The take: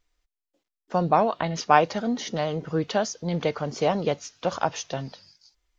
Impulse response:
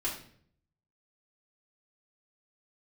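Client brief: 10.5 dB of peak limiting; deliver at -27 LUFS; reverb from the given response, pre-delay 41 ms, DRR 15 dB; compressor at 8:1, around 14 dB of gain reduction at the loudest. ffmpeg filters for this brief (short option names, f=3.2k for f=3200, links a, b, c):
-filter_complex "[0:a]acompressor=threshold=-27dB:ratio=8,alimiter=level_in=1dB:limit=-24dB:level=0:latency=1,volume=-1dB,asplit=2[a][b];[1:a]atrim=start_sample=2205,adelay=41[c];[b][c]afir=irnorm=-1:irlink=0,volume=-19.5dB[d];[a][d]amix=inputs=2:normalize=0,volume=8.5dB"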